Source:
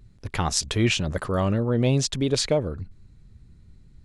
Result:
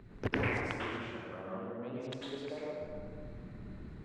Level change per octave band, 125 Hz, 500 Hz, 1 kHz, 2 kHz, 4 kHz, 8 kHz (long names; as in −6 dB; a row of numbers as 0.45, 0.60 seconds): −17.0, −13.0, −10.0, −6.0, −19.5, −32.5 decibels